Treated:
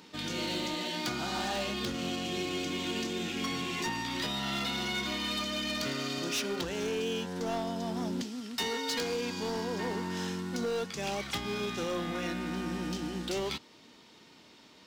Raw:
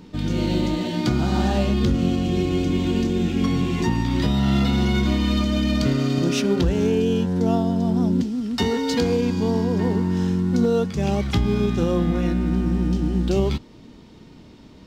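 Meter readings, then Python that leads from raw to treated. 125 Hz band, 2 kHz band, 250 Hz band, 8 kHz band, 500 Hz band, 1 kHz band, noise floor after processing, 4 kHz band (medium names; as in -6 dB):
-20.0 dB, -2.5 dB, -15.5 dB, -1.5 dB, -11.0 dB, -6.0 dB, -57 dBFS, -2.0 dB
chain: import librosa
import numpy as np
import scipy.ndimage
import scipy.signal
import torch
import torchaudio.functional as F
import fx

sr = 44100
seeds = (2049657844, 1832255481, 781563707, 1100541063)

p1 = fx.highpass(x, sr, hz=1400.0, slope=6)
p2 = fx.rider(p1, sr, range_db=10, speed_s=0.5)
p3 = p1 + (p2 * 10.0 ** (0.0 / 20.0))
p4 = np.clip(10.0 ** (22.0 / 20.0) * p3, -1.0, 1.0) / 10.0 ** (22.0 / 20.0)
y = p4 * 10.0 ** (-6.0 / 20.0)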